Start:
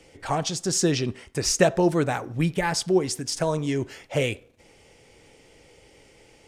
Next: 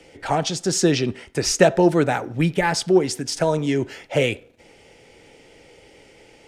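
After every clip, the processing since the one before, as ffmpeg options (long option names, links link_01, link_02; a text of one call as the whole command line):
ffmpeg -i in.wav -filter_complex "[0:a]bandreject=frequency=1100:width=9.1,acrossover=split=160|4600[link_01][link_02][link_03];[link_02]acontrast=32[link_04];[link_01][link_04][link_03]amix=inputs=3:normalize=0" out.wav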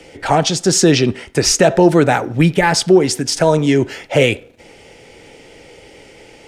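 ffmpeg -i in.wav -af "alimiter=level_in=9dB:limit=-1dB:release=50:level=0:latency=1,volume=-1dB" out.wav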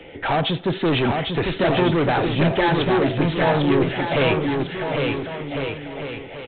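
ffmpeg -i in.wav -af "aresample=8000,asoftclip=type=tanh:threshold=-16.5dB,aresample=44100,aecho=1:1:800|1400|1850|2188|2441:0.631|0.398|0.251|0.158|0.1" out.wav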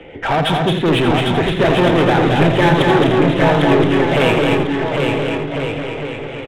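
ffmpeg -i in.wav -af "aecho=1:1:218.7|250.7:0.631|0.316,adynamicsmooth=sensitivity=4:basefreq=3500,aecho=1:1:85:0.335,volume=4dB" out.wav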